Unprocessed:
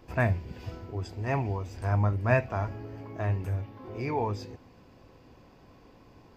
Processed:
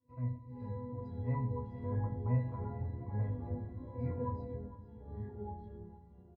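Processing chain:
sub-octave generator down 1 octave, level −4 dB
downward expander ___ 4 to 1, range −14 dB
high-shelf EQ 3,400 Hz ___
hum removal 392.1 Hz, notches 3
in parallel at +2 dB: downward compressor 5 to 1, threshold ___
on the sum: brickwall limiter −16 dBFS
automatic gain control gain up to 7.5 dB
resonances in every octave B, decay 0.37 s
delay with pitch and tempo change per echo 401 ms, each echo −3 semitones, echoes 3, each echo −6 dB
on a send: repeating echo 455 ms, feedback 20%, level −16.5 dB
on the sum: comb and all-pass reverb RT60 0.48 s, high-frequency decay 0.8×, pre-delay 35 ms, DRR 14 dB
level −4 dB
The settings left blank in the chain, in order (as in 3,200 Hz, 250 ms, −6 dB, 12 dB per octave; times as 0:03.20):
−46 dBFS, −5 dB, −40 dBFS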